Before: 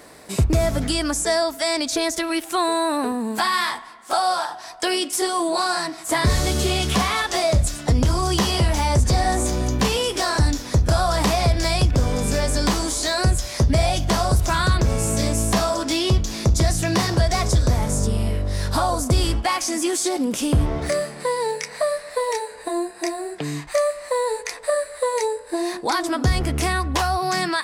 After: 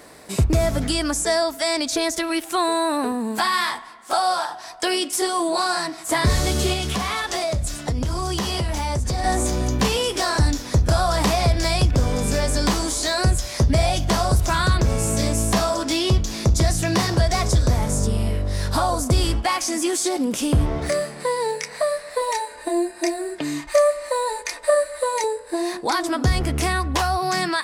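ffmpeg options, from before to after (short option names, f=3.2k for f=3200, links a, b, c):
-filter_complex "[0:a]asettb=1/sr,asplit=3[a][b][c];[a]atrim=end=6.734[d];[b]atrim=start=6.73:end=9.24,asetpts=PTS-STARTPTS,afade=t=in:d=0.004:c=qsin,afade=t=out:st=2.506:d=0.004:c=qsin,acompressor=threshold=-21dB:ratio=3:attack=3.2:release=140:knee=1:detection=peak[e];[c]atrim=start=9.236[f];[d][e]acrossfade=d=0.004:c1=hsin:c2=qsin[g];[g][f]acrossfade=d=0.004:c1=qsin:c2=hsin,asettb=1/sr,asplit=3[h][i][j];[h]atrim=end=22.214[k];[i]atrim=start=22.21:end=25.24,asetpts=PTS-STARTPTS,afade=t=in:d=0.004:c=qsin,afade=t=out:st=3.026:d=0.004:c=qsin,aecho=1:1:3.3:0.65,atrim=end_sample=133623[l];[j]atrim=start=25.236[m];[k][l]acrossfade=d=0.004:c1=hsin:c2=qsin[n];[n][m]acrossfade=d=0.004:c1=qsin:c2=hsin"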